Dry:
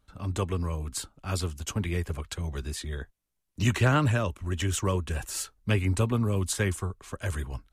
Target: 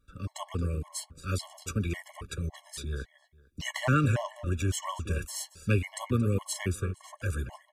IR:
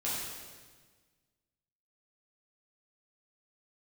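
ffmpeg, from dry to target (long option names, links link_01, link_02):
-filter_complex "[0:a]asplit=2[link_01][link_02];[link_02]adelay=227,lowpass=frequency=5000:poles=1,volume=-12.5dB,asplit=2[link_03][link_04];[link_04]adelay=227,lowpass=frequency=5000:poles=1,volume=0.22,asplit=2[link_05][link_06];[link_06]adelay=227,lowpass=frequency=5000:poles=1,volume=0.22[link_07];[link_01][link_03][link_05][link_07]amix=inputs=4:normalize=0,afftfilt=real='re*gt(sin(2*PI*1.8*pts/sr)*(1-2*mod(floor(b*sr/1024/560),2)),0)':imag='im*gt(sin(2*PI*1.8*pts/sr)*(1-2*mod(floor(b*sr/1024/560),2)),0)':win_size=1024:overlap=0.75"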